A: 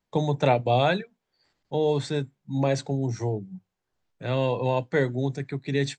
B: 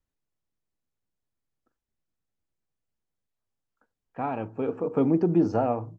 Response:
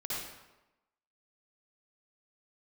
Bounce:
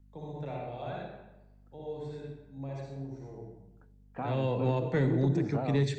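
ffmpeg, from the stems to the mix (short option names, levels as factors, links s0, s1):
-filter_complex "[0:a]highshelf=f=2800:g=-9.5,volume=0.944,afade=t=in:st=4.18:d=0.41:silence=0.375837,asplit=2[s0][s1];[s1]volume=0.282[s2];[1:a]aeval=exprs='val(0)+0.00126*(sin(2*PI*50*n/s)+sin(2*PI*2*50*n/s)/2+sin(2*PI*3*50*n/s)/3+sin(2*PI*4*50*n/s)/4+sin(2*PI*5*50*n/s)/5)':c=same,acompressor=threshold=0.00708:ratio=1.5,volume=1.12,asplit=2[s3][s4];[s4]apad=whole_len=263830[s5];[s0][s5]sidechaingate=range=0.1:threshold=0.00316:ratio=16:detection=peak[s6];[2:a]atrim=start_sample=2205[s7];[s2][s7]afir=irnorm=-1:irlink=0[s8];[s6][s3][s8]amix=inputs=3:normalize=0,acrossover=split=310|3000[s9][s10][s11];[s10]acompressor=threshold=0.0224:ratio=2.5[s12];[s9][s12][s11]amix=inputs=3:normalize=0,asoftclip=type=tanh:threshold=0.126"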